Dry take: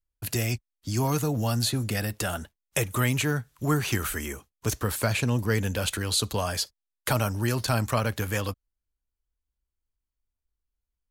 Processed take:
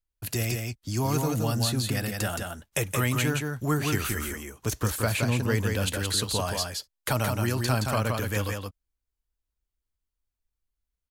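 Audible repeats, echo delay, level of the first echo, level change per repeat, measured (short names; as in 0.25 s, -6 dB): 1, 0.171 s, -4.0 dB, no steady repeat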